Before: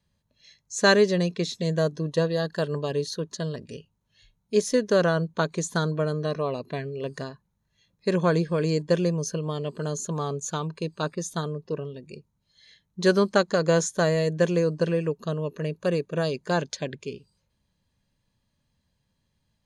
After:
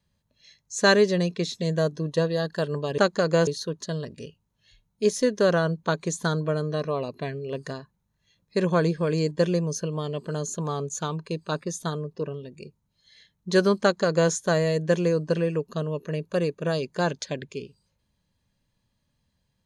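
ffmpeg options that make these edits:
-filter_complex "[0:a]asplit=3[a][b][c];[a]atrim=end=2.982[d];[b]atrim=start=13.328:end=13.822[e];[c]atrim=start=2.978[f];[d][e]acrossfade=d=0.004:c1=hsin:c2=hsin[g];[g][f]acrossfade=d=0.004:c1=hsin:c2=hsin"

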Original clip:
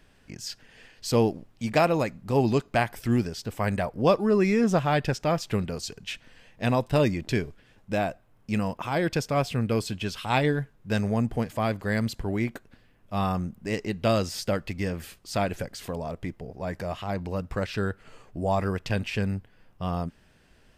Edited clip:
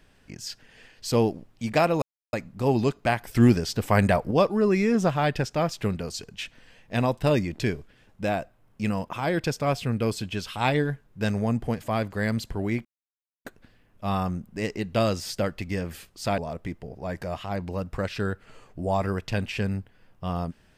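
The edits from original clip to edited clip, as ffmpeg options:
-filter_complex "[0:a]asplit=6[a][b][c][d][e][f];[a]atrim=end=2.02,asetpts=PTS-STARTPTS,afade=t=out:st=2.016:d=0.004:c=hsin,apad=pad_dur=0.31[g];[b]atrim=start=2.02:end=3.042,asetpts=PTS-STARTPTS,afade=t=in:d=0.004:c=hsin[h];[c]atrim=start=3.038:end=4.002,asetpts=PTS-STARTPTS,volume=6.5dB[i];[d]atrim=start=3.998:end=12.54,asetpts=PTS-STARTPTS,afade=t=out:st=8.538:d=0.004:c=hsin,apad=pad_dur=0.6[j];[e]atrim=start=12.54:end=15.472,asetpts=PTS-STARTPTS,afade=t=in:d=0.004:c=hsin[k];[f]atrim=start=15.958[l];[g][h]concat=n=2:v=0:a=1[m];[m][i]acrossfade=d=0.004:c1=hsin:c2=hsin[n];[j][k]concat=n=2:v=0:a=1[o];[n][o]acrossfade=d=0.004:c1=hsin:c2=hsin[p];[p][l]acrossfade=d=0.004:c1=hsin:c2=hsin"

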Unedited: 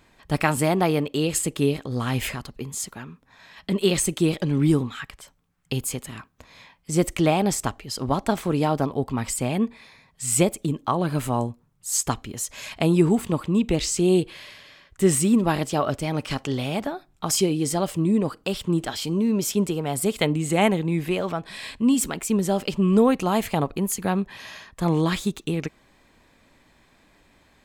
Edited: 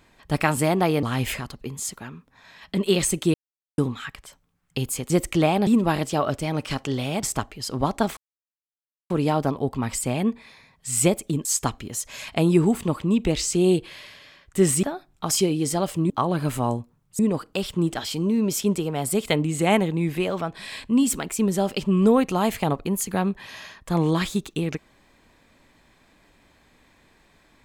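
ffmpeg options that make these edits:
-filter_complex "[0:a]asplit=12[a][b][c][d][e][f][g][h][i][j][k][l];[a]atrim=end=1.032[m];[b]atrim=start=1.978:end=4.29,asetpts=PTS-STARTPTS,afade=t=out:st=2.308:d=0.004:c=hsin[n];[c]atrim=start=4.29:end=4.73,asetpts=PTS-STARTPTS,volume=0[o];[d]atrim=start=4.73:end=6.052,asetpts=PTS-STARTPTS,afade=t=in:d=0.004:c=hsin[p];[e]atrim=start=6.938:end=7.512[q];[f]atrim=start=15.268:end=16.832[r];[g]atrim=start=7.508:end=8.45,asetpts=PTS-STARTPTS,afade=t=out:st=0.938:d=0.004:c=hsin,apad=pad_dur=0.93[s];[h]atrim=start=8.45:end=10.802,asetpts=PTS-STARTPTS,afade=t=in:d=0.004:c=hsin[t];[i]atrim=start=11.888:end=15.272[u];[j]atrim=start=16.828:end=18.102[v];[k]atrim=start=10.798:end=11.892[w];[l]atrim=start=18.098[x];[n][o][p]concat=n=3:v=0:a=1[y];[m][y]acrossfade=d=0.004:c1=hsin:c2=hsin[z];[z][q]acrossfade=d=0.004:c1=hsin:c2=hsin[aa];[aa][r]acrossfade=d=0.004:c1=hsin:c2=hsin[ab];[s][t]concat=n=2:v=0:a=1[ac];[ab][ac]acrossfade=d=0.004:c1=hsin:c2=hsin[ad];[ad][u]acrossfade=d=0.004:c1=hsin:c2=hsin[ae];[ae][v]acrossfade=d=0.004:c1=hsin:c2=hsin[af];[af][w]acrossfade=d=0.004:c1=hsin:c2=hsin[ag];[ag][x]acrossfade=d=0.004:c1=hsin:c2=hsin"

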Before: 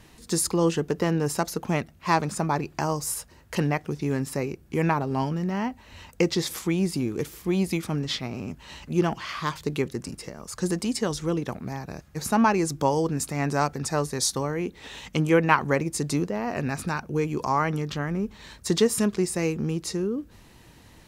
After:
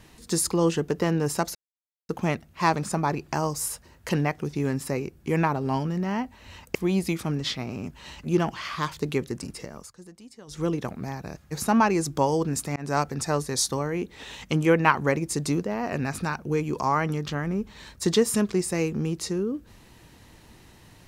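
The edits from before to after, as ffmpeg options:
-filter_complex "[0:a]asplit=6[a][b][c][d][e][f];[a]atrim=end=1.55,asetpts=PTS-STARTPTS,afade=t=out:st=1.546:d=0.004:c=hsin,apad=pad_dur=0.54[g];[b]atrim=start=1.55:end=6.212,asetpts=PTS-STARTPTS,afade=t=in:d=0.004:c=hsin[h];[c]atrim=start=7.388:end=10.56,asetpts=PTS-STARTPTS,afade=t=out:st=3.022:d=0.15:silence=0.0944061[i];[d]atrim=start=10.56:end=11.11,asetpts=PTS-STARTPTS,volume=-20.5dB[j];[e]atrim=start=11.11:end=13.4,asetpts=PTS-STARTPTS,afade=t=in:d=0.15:silence=0.0944061,afade=t=out:st=2.286:d=0.004:c=hsin[k];[f]atrim=start=13.4,asetpts=PTS-STARTPTS,afade=t=in:d=0.27:c=qsin[l];[g][h]concat=n=2:v=0:a=1[m];[i][j][k][l]concat=n=4:v=0:a=1[n];[m][n]acrossfade=d=0.004:c1=hsin:c2=hsin"

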